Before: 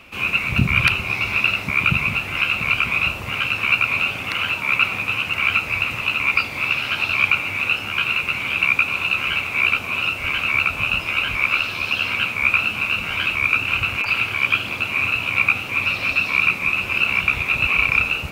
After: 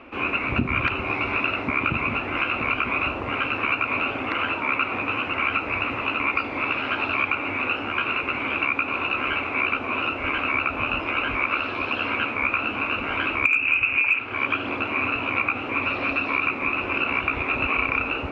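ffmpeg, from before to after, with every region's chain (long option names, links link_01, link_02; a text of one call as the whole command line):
ffmpeg -i in.wav -filter_complex "[0:a]asettb=1/sr,asplit=3[link_01][link_02][link_03];[link_01]atrim=end=13.454[link_04];[link_02]atrim=start=13.45:end=14.19,asetpts=PTS-STARTPTS,afade=type=in:duration=0.004:curve=qsin,afade=type=out:start_time=0.736:duration=0.004:curve=qsin,lowpass=frequency=2500:width_type=q:width=10,volume=-4.5dB,asoftclip=hard,volume=4.5dB[link_05];[link_03]atrim=start=14.186[link_06];[link_04][link_05]acrossfade=duration=0.004:curve1=hsin:curve2=qsin[link_07];[link_07][link_06]acrossfade=duration=0.004:curve1=qsin:curve2=hsin,lowpass=1500,lowshelf=frequency=220:width_type=q:width=3:gain=-6.5,acompressor=threshold=-23dB:ratio=6,volume=4.5dB" out.wav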